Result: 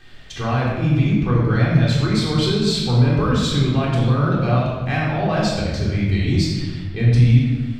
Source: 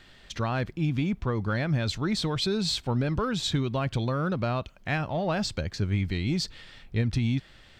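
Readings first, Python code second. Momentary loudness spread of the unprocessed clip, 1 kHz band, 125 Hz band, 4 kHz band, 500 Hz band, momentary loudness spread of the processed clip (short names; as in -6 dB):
5 LU, +8.0 dB, +12.5 dB, +6.0 dB, +8.0 dB, 6 LU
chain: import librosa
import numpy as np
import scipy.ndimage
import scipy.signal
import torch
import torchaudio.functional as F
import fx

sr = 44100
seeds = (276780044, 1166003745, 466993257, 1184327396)

y = fx.room_shoebox(x, sr, seeds[0], volume_m3=1100.0, walls='mixed', distance_m=3.7)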